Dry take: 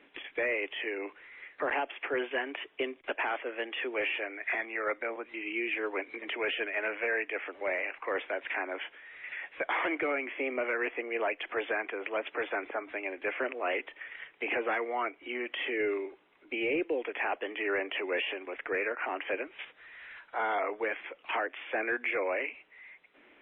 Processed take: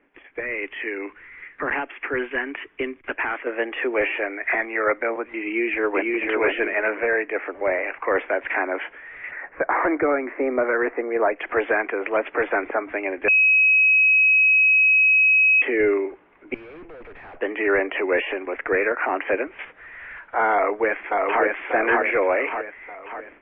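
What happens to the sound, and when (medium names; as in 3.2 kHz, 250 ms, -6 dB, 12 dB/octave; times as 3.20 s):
0.40–3.47 s: peaking EQ 630 Hz -11 dB 1.4 oct
5.44–6.23 s: echo throw 500 ms, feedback 20%, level -2 dB
6.90–7.87 s: treble shelf 3.1 kHz -10 dB
9.31–11.36 s: low-pass 1.8 kHz 24 dB/octave
13.28–15.62 s: bleep 2.55 kHz -17.5 dBFS
16.54–17.40 s: valve stage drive 51 dB, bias 0.65
20.52–21.43 s: echo throw 590 ms, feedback 50%, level -1.5 dB
whole clip: low-pass 2.2 kHz 24 dB/octave; bass shelf 100 Hz +11.5 dB; level rider gain up to 14 dB; trim -3 dB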